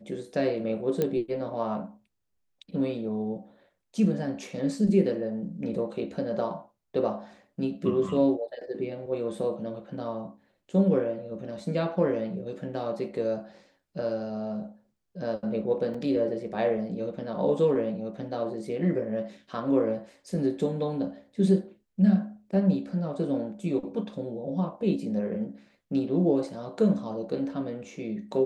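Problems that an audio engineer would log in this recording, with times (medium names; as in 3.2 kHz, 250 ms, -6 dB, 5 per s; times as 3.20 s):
1.02 s: pop -14 dBFS
15.94 s: dropout 3.9 ms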